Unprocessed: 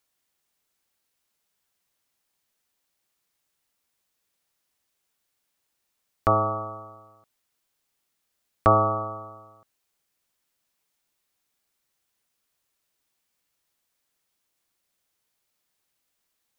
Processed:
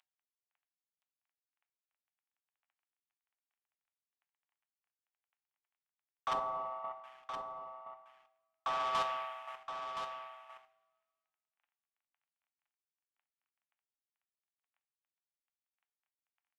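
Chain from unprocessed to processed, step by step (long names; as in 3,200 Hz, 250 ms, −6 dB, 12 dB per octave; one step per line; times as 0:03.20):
variable-slope delta modulation 16 kbit/s
Butterworth high-pass 680 Hz 48 dB per octave
in parallel at +2 dB: downward compressor, threshold −33 dBFS, peak gain reduction 13.5 dB
on the sum: brickwall limiter −18.5 dBFS, peak gain reduction 8 dB
leveller curve on the samples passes 1
square-wave tremolo 1.9 Hz, depth 60%, duty 15%
soft clipping −28 dBFS, distortion −11 dB
0:06.33–0:07.04: Savitzky-Golay smoothing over 65 samples
on a send: single-tap delay 1,020 ms −7.5 dB
on the sum: coupled-rooms reverb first 0.39 s, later 1.8 s, from −18 dB, DRR 8.5 dB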